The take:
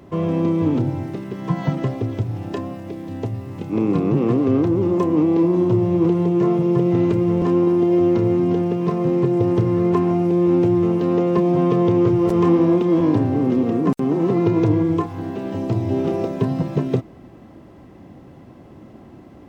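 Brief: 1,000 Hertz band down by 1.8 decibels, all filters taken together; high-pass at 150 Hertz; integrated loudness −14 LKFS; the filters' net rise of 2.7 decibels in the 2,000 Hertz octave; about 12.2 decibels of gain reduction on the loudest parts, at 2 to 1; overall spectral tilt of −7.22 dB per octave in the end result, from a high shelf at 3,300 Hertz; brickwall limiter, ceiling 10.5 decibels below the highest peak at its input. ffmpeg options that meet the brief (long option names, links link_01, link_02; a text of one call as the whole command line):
ffmpeg -i in.wav -af "highpass=150,equalizer=frequency=1000:width_type=o:gain=-3,equalizer=frequency=2000:width_type=o:gain=6,highshelf=frequency=3300:gain=-6.5,acompressor=threshold=-37dB:ratio=2,volume=21.5dB,alimiter=limit=-6dB:level=0:latency=1" out.wav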